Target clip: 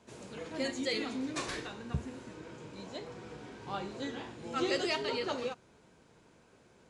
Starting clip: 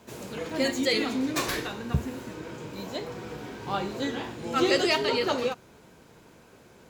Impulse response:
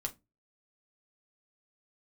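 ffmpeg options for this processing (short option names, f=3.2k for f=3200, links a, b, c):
-af "aresample=22050,aresample=44100,volume=-8.5dB"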